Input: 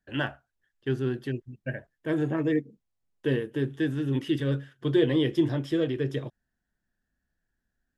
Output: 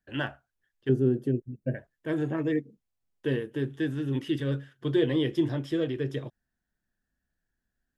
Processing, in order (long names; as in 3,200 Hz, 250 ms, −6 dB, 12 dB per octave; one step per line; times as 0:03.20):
0:00.89–0:01.75: graphic EQ with 10 bands 125 Hz +4 dB, 250 Hz +6 dB, 500 Hz +8 dB, 1,000 Hz −8 dB, 2,000 Hz −9 dB, 4,000 Hz −11 dB
level −2 dB